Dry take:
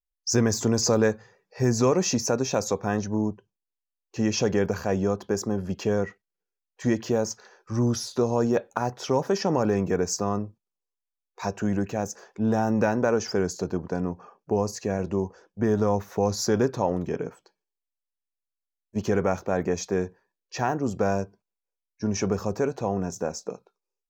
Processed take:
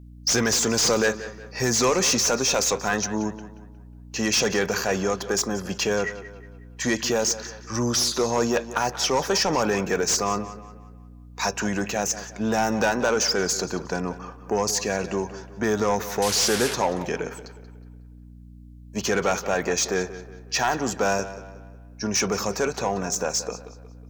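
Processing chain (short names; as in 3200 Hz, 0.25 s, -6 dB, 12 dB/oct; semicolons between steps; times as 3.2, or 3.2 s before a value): 16.22–16.74 delta modulation 64 kbps, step -30.5 dBFS; HPF 120 Hz 12 dB/oct; tilt shelf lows -8.5 dB, about 940 Hz; soft clip -21 dBFS, distortion -11 dB; hum 60 Hz, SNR 19 dB; tape echo 0.181 s, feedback 45%, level -12.5 dB, low-pass 3900 Hz; slew limiter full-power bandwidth 270 Hz; gain +7 dB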